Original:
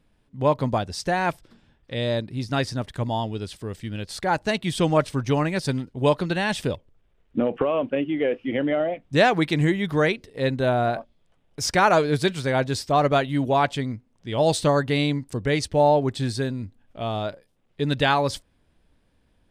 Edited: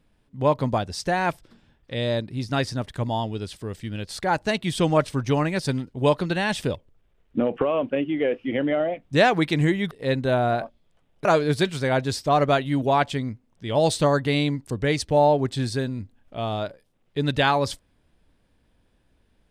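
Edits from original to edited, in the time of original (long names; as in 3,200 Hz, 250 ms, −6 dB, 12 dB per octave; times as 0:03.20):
0:09.91–0:10.26: remove
0:11.60–0:11.88: remove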